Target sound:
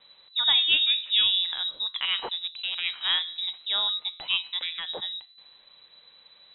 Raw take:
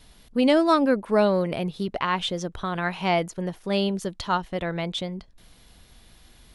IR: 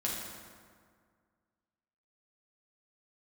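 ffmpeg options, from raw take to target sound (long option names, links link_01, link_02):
-filter_complex "[0:a]bandreject=frequency=84.04:width_type=h:width=4,bandreject=frequency=168.08:width_type=h:width=4,bandreject=frequency=252.12:width_type=h:width=4,bandreject=frequency=336.16:width_type=h:width=4,bandreject=frequency=420.2:width_type=h:width=4,bandreject=frequency=504.24:width_type=h:width=4,bandreject=frequency=588.28:width_type=h:width=4,bandreject=frequency=672.32:width_type=h:width=4,bandreject=frequency=756.36:width_type=h:width=4,bandreject=frequency=840.4:width_type=h:width=4,bandreject=frequency=924.44:width_type=h:width=4,bandreject=frequency=1008.48:width_type=h:width=4,bandreject=frequency=1092.52:width_type=h:width=4,bandreject=frequency=1176.56:width_type=h:width=4,bandreject=frequency=1260.6:width_type=h:width=4,bandreject=frequency=1344.64:width_type=h:width=4,bandreject=frequency=1428.68:width_type=h:width=4,bandreject=frequency=1512.72:width_type=h:width=4,bandreject=frequency=1596.76:width_type=h:width=4,bandreject=frequency=1680.8:width_type=h:width=4,bandreject=frequency=1764.84:width_type=h:width=4,bandreject=frequency=1848.88:width_type=h:width=4,bandreject=frequency=1932.92:width_type=h:width=4,bandreject=frequency=2016.96:width_type=h:width=4,bandreject=frequency=2101:width_type=h:width=4,bandreject=frequency=2185.04:width_type=h:width=4,bandreject=frequency=2269.08:width_type=h:width=4,bandreject=frequency=2353.12:width_type=h:width=4,bandreject=frequency=2437.16:width_type=h:width=4,bandreject=frequency=2521.2:width_type=h:width=4,bandreject=frequency=2605.24:width_type=h:width=4,bandreject=frequency=2689.28:width_type=h:width=4,bandreject=frequency=2773.32:width_type=h:width=4,bandreject=frequency=2857.36:width_type=h:width=4,bandreject=frequency=2941.4:width_type=h:width=4,asettb=1/sr,asplit=3[link_01][link_02][link_03];[link_01]atrim=end=2.204[link_04];[link_02]atrim=start=2.2:end=3.25,asetpts=PTS-STARTPTS,afade=type=in:duration=0.004:curve=qsin,afade=type=out:start_time=1.046:duration=0.004:curve=qsin,adynamicsmooth=sensitivity=5.5:basefreq=590[link_05];[link_03]atrim=start=3.246[link_06];[link_04][link_05]acrossfade=duration=0.004:curve1=hsin:curve2=qsin[link_07];[link_07][link_06]acrossfade=duration=0.004:curve1=qsin:curve2=hsin,lowpass=frequency=3400:width_type=q:width=0.5098,lowpass=frequency=3400:width_type=q:width=0.6013,lowpass=frequency=3400:width_type=q:width=0.9,lowpass=frequency=3400:width_type=q:width=2.563,afreqshift=-4000,volume=-2.5dB"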